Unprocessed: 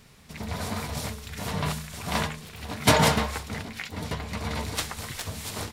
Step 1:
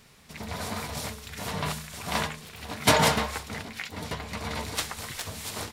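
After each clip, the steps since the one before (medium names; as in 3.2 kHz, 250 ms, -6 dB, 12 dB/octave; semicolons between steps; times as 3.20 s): bass shelf 260 Hz -5.5 dB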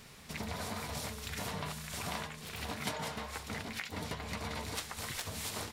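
compression 10:1, threshold -38 dBFS, peak gain reduction 22.5 dB; trim +2 dB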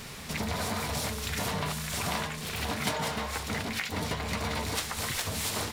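companding laws mixed up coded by mu; trim +5 dB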